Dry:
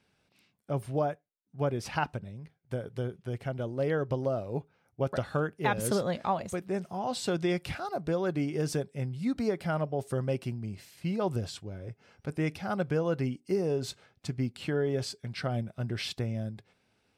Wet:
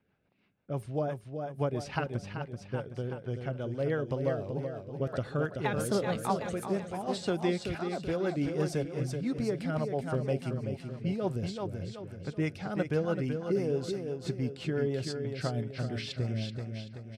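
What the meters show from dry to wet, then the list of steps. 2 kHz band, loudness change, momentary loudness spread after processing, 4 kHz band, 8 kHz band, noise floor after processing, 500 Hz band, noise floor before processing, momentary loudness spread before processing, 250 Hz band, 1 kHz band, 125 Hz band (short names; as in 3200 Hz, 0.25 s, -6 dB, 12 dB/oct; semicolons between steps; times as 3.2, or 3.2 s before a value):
-2.0 dB, -1.0 dB, 7 LU, -2.0 dB, -3.5 dB, -51 dBFS, -0.5 dB, -73 dBFS, 10 LU, 0.0 dB, -3.0 dB, 0.0 dB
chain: low-pass opened by the level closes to 2000 Hz, open at -26.5 dBFS; on a send: feedback echo 0.381 s, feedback 48%, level -6 dB; on the sum: rotary speaker horn 6 Hz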